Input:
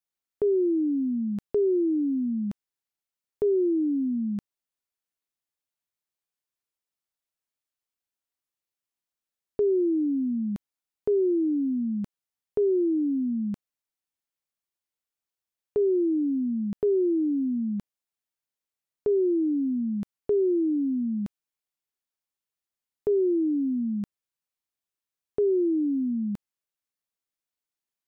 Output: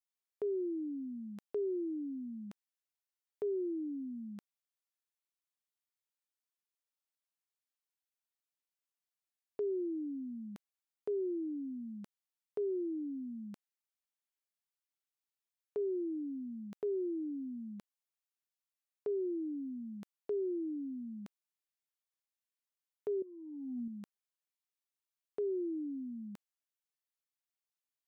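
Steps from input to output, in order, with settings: HPF 740 Hz 6 dB/oct; 23.22–23.88 negative-ratio compressor -37 dBFS, ratio -0.5; gain -5.5 dB

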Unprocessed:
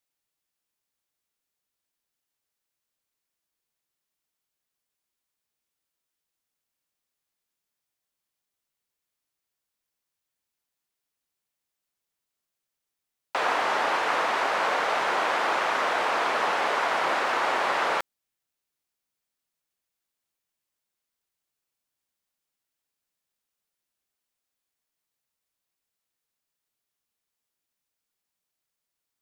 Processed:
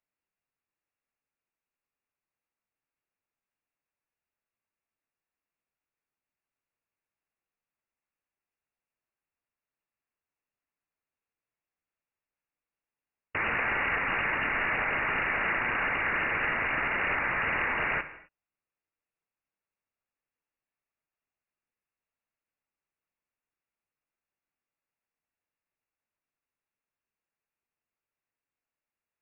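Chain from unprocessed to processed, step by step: wrapped overs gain 18 dB; non-linear reverb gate 0.29 s falling, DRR 9.5 dB; inverted band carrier 2800 Hz; gain -3 dB

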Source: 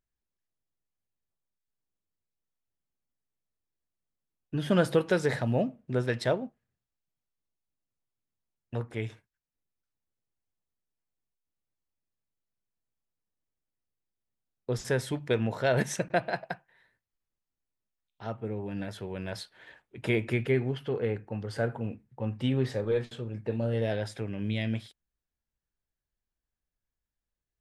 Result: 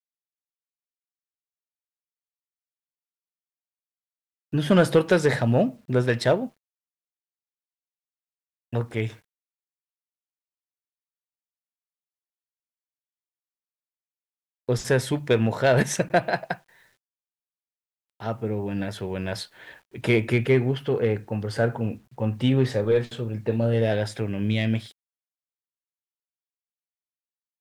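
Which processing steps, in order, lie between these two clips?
in parallel at -3.5 dB: hard clip -20.5 dBFS, distortion -16 dB; on the sum: bit-crush 11-bit; gain +2.5 dB

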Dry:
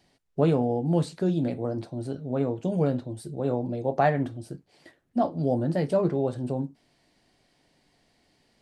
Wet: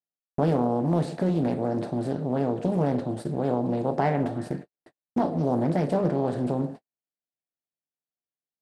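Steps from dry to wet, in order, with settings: per-bin compression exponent 0.6; in parallel at -2 dB: compressor 8:1, threshold -29 dBFS, peak gain reduction 14.5 dB; on the sum: dynamic EQ 210 Hz, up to +5 dB, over -34 dBFS, Q 0.86; on a send: delay with a stepping band-pass 0.119 s, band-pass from 530 Hz, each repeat 0.7 oct, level -10 dB; on the sum: gate -28 dBFS, range -59 dB; Doppler distortion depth 0.34 ms; gain -7 dB

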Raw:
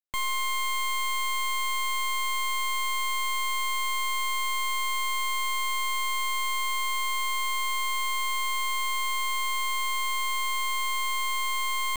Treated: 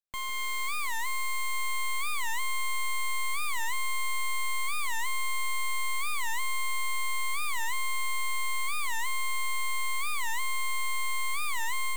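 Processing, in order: AGC; soft clip -26 dBFS, distortion -21 dB; on a send: echo with dull and thin repeats by turns 0.155 s, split 2400 Hz, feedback 85%, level -9 dB; on the sum: record warp 45 rpm, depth 250 cents; gain -5 dB

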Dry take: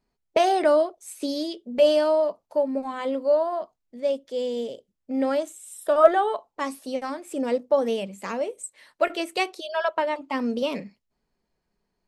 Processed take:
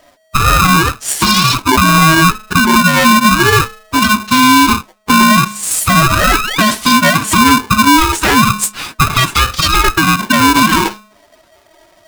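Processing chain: treble ducked by the level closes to 390 Hz, closed at -16 dBFS; formant-preserving pitch shift +7.5 st; compressor 4:1, threshold -34 dBFS, peak gain reduction 14.5 dB; painted sound rise, 6–6.71, 580–4400 Hz -49 dBFS; flange 0.33 Hz, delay 1.8 ms, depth 5.9 ms, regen -42%; de-hum 217.5 Hz, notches 6; maximiser +34 dB; polarity switched at an audio rate 640 Hz; gain -1 dB

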